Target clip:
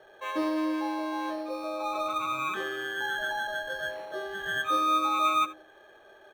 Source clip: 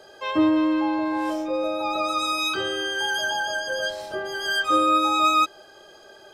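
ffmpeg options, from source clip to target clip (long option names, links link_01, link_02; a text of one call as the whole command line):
ffmpeg -i in.wav -filter_complex "[0:a]lowshelf=frequency=200:gain=-5.5,acrusher=samples=9:mix=1:aa=0.000001,acrossover=split=210 3400:gain=0.178 1 0.158[link_01][link_02][link_03];[link_01][link_02][link_03]amix=inputs=3:normalize=0,bandreject=frequency=52.4:width_type=h:width=4,bandreject=frequency=104.8:width_type=h:width=4,bandreject=frequency=157.2:width_type=h:width=4,bandreject=frequency=209.6:width_type=h:width=4,bandreject=frequency=262:width_type=h:width=4,bandreject=frequency=314.4:width_type=h:width=4,bandreject=frequency=366.8:width_type=h:width=4,bandreject=frequency=419.2:width_type=h:width=4,bandreject=frequency=471.6:width_type=h:width=4,bandreject=frequency=524:width_type=h:width=4,bandreject=frequency=576.4:width_type=h:width=4,asplit=2[link_04][link_05];[link_05]aecho=0:1:77:0.133[link_06];[link_04][link_06]amix=inputs=2:normalize=0,volume=-4.5dB" out.wav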